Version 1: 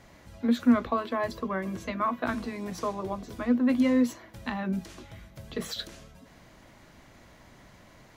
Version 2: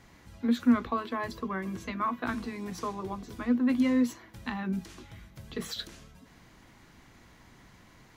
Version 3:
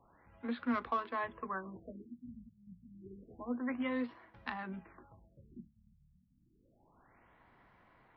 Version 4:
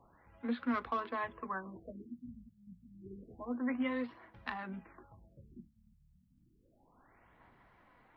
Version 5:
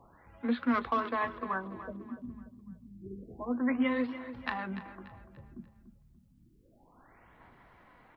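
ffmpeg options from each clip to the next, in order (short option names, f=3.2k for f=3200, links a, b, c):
-af "equalizer=f=600:w=3.9:g=-9.5,volume=-1.5dB"
-filter_complex "[0:a]adynamicsmooth=sensitivity=5:basefreq=1.7k,acrossover=split=510 4300:gain=0.251 1 0.251[a][b][c];[a][b][c]amix=inputs=3:normalize=0,afftfilt=real='re*lt(b*sr/1024,210*pow(6200/210,0.5+0.5*sin(2*PI*0.29*pts/sr)))':imag='im*lt(b*sr/1024,210*pow(6200/210,0.5+0.5*sin(2*PI*0.29*pts/sr)))':win_size=1024:overlap=0.75,volume=-1.5dB"
-af "aphaser=in_gain=1:out_gain=1:delay=4.1:decay=0.28:speed=0.94:type=sinusoidal"
-af "aecho=1:1:291|582|873|1164:0.224|0.0851|0.0323|0.0123,volume=5.5dB"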